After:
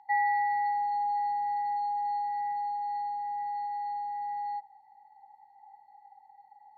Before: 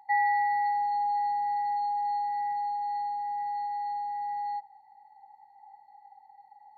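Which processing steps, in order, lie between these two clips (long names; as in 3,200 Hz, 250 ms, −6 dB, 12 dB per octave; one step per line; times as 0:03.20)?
low-pass filter 4,300 Hz 12 dB per octave
level −1.5 dB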